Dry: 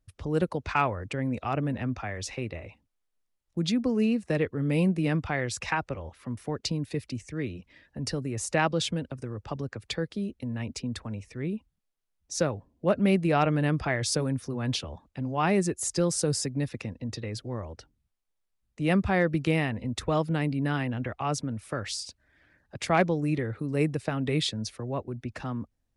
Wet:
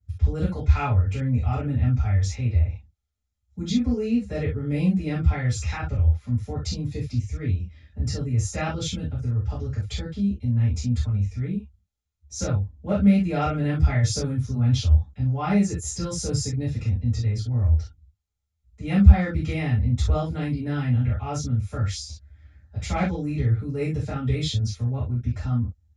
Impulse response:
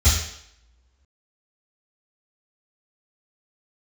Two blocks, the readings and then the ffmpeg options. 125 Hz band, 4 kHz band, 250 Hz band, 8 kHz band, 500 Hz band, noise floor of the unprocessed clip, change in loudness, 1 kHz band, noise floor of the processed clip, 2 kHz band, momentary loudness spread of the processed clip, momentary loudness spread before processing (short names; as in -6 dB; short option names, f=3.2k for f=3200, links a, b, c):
+9.5 dB, -0.5 dB, +3.0 dB, +0.5 dB, -3.0 dB, -78 dBFS, +5.0 dB, -2.0 dB, -76 dBFS, -3.5 dB, 8 LU, 12 LU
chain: -filter_complex "[1:a]atrim=start_sample=2205,atrim=end_sample=3528[a];[0:a][a]afir=irnorm=-1:irlink=0,volume=-18dB"